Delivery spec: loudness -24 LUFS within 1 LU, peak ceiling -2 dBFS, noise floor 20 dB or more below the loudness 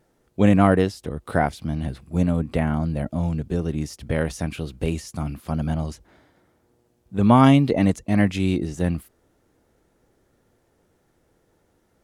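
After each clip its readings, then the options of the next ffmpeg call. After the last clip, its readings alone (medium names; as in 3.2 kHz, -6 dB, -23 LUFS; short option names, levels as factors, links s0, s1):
loudness -22.5 LUFS; peak level -2.5 dBFS; loudness target -24.0 LUFS
-> -af "volume=0.841"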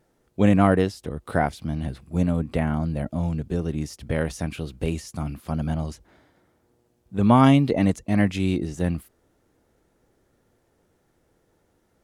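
loudness -24.0 LUFS; peak level -4.0 dBFS; noise floor -68 dBFS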